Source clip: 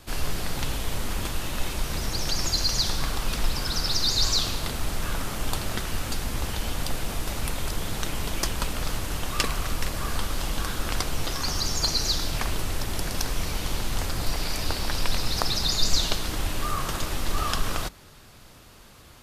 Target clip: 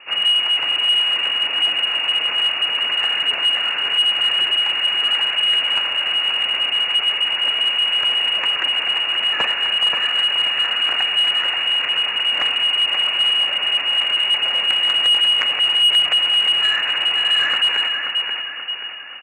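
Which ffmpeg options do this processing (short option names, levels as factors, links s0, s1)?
-filter_complex "[0:a]asplit=4[s0][s1][s2][s3];[s1]asetrate=35002,aresample=44100,atempo=1.25992,volume=0.224[s4];[s2]asetrate=37084,aresample=44100,atempo=1.18921,volume=0.141[s5];[s3]asetrate=58866,aresample=44100,atempo=0.749154,volume=0.282[s6];[s0][s4][s5][s6]amix=inputs=4:normalize=0,lowpass=f=2500:t=q:w=0.5098,lowpass=f=2500:t=q:w=0.6013,lowpass=f=2500:t=q:w=0.9,lowpass=f=2500:t=q:w=2.563,afreqshift=-2900,asplit=2[s7][s8];[s8]aecho=0:1:531|1062|1593|2124|2655|3186:0.501|0.241|0.115|0.0554|0.0266|0.0128[s9];[s7][s9]amix=inputs=2:normalize=0,asplit=2[s10][s11];[s11]highpass=f=720:p=1,volume=7.08,asoftclip=type=tanh:threshold=0.841[s12];[s10][s12]amix=inputs=2:normalize=0,lowpass=f=1600:p=1,volume=0.501"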